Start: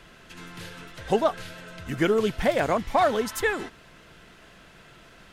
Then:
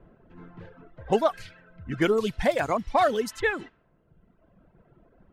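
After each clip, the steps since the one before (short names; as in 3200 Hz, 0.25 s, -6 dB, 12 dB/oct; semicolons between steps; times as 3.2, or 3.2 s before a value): reverb removal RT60 1.8 s; low-pass opened by the level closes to 560 Hz, open at -23 dBFS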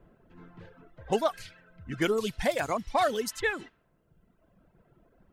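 high shelf 3700 Hz +9.5 dB; gain -4.5 dB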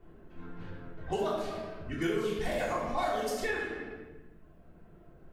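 shoebox room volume 640 m³, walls mixed, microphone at 3.4 m; compressor 2:1, threshold -33 dBFS, peak gain reduction 11 dB; gain -3 dB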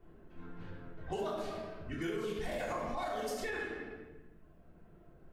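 limiter -25 dBFS, peak gain reduction 5 dB; gain -3.5 dB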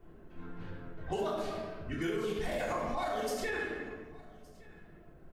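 echo 1.166 s -23.5 dB; gain +3 dB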